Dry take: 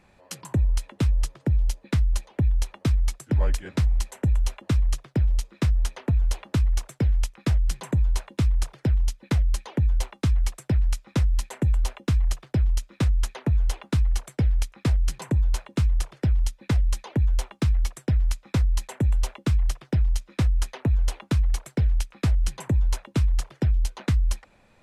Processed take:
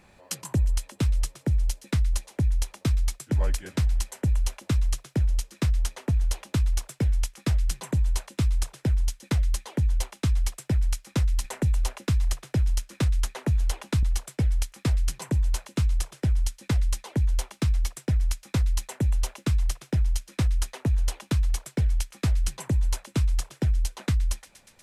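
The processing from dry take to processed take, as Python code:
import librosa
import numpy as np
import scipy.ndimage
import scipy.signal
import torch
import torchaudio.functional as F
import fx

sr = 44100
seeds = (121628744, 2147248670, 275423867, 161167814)

y = fx.high_shelf(x, sr, hz=5000.0, db=6.5)
y = fx.rider(y, sr, range_db=4, speed_s=0.5)
y = fx.echo_wet_highpass(y, sr, ms=120, feedback_pct=78, hz=1800.0, wet_db=-15)
y = fx.band_squash(y, sr, depth_pct=40, at=(11.44, 14.03))
y = y * 10.0 ** (-2.0 / 20.0)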